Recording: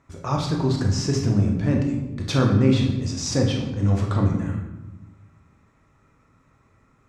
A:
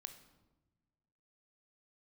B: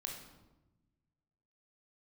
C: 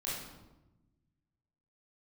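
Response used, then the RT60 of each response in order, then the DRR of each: B; not exponential, 1.0 s, 1.0 s; 8.5, 1.0, -8.0 dB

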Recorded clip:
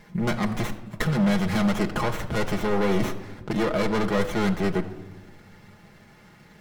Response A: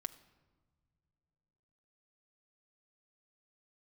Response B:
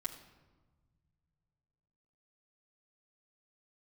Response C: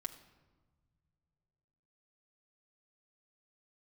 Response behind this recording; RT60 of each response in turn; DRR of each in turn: C; not exponential, 1.3 s, 1.5 s; 6.0, -5.0, 1.0 dB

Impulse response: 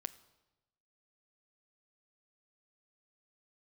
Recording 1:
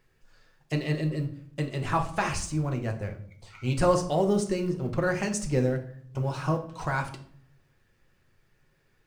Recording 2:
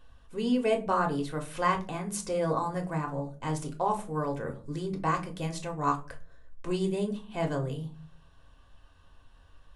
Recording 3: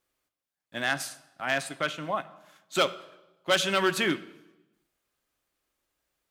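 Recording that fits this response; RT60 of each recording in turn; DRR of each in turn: 3; 0.60 s, not exponential, 1.0 s; 3.0, 2.5, 12.0 dB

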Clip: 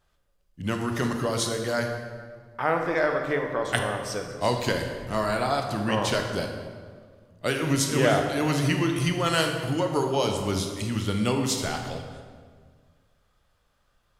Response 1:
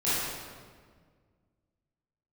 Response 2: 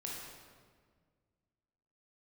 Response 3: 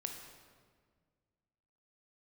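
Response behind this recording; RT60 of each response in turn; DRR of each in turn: 3; 1.7, 1.7, 1.7 s; -13.0, -3.5, 3.5 dB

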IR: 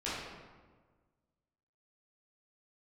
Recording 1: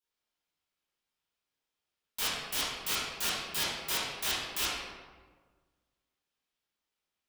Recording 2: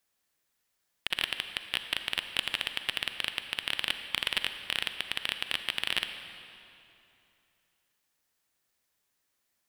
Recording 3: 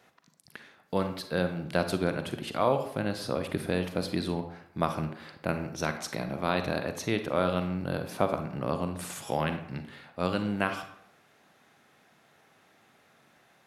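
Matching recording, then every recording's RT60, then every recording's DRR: 1; 1.5, 2.9, 0.70 s; -10.5, 8.0, 7.5 dB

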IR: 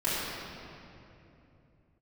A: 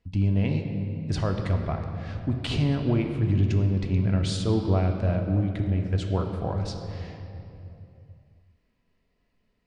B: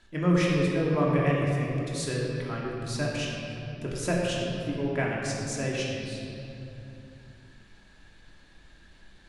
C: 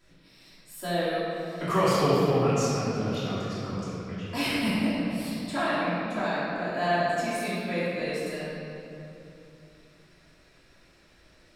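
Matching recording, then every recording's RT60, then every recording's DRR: C; 2.9, 2.9, 2.9 s; 3.5, -4.5, -12.5 dB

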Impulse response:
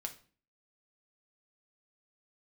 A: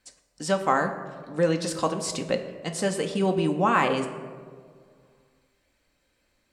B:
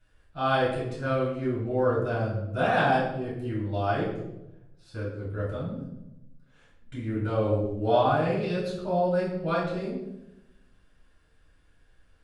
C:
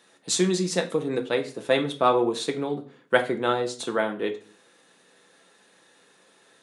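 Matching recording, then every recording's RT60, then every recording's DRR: C; 2.0, 0.90, 0.40 s; 4.5, -8.0, 4.0 dB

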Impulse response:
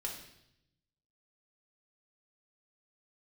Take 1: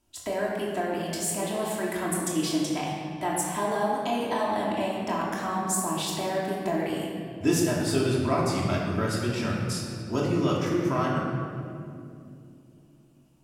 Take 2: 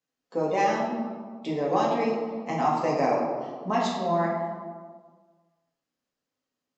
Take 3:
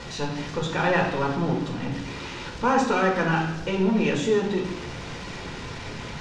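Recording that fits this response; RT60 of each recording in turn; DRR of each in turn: 3; 2.6, 1.6, 0.75 s; -5.0, -5.0, -1.5 dB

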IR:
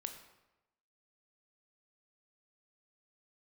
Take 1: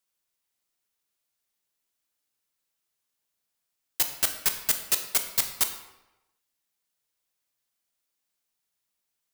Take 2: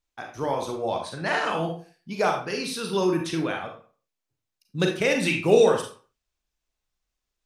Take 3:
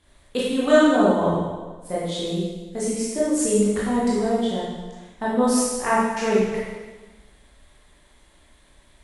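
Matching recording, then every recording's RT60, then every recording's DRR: 1; 1.0, 0.40, 1.3 s; 6.0, 2.0, -8.0 dB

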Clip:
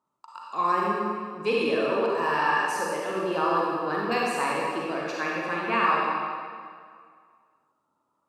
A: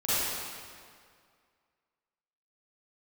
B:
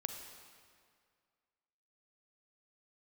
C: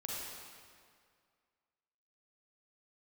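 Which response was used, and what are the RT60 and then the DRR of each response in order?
C; 2.1, 2.1, 2.1 s; -13.5, 5.5, -4.5 dB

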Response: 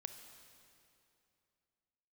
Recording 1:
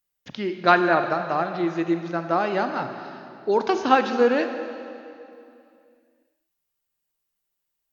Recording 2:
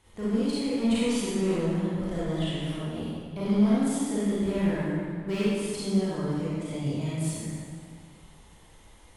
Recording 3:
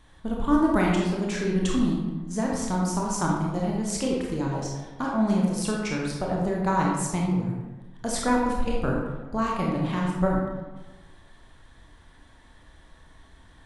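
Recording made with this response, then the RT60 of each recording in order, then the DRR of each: 1; 2.7, 1.9, 1.2 s; 7.0, -10.0, -2.5 dB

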